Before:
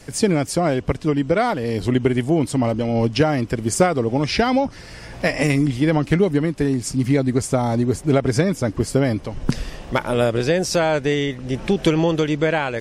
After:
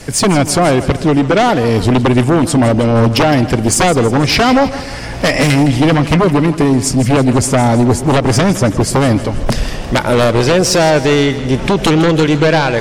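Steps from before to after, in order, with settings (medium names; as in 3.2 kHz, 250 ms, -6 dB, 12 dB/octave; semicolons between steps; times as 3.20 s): sine folder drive 9 dB, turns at -5.5 dBFS; two-band feedback delay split 610 Hz, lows 121 ms, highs 161 ms, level -13.5 dB; trim -1 dB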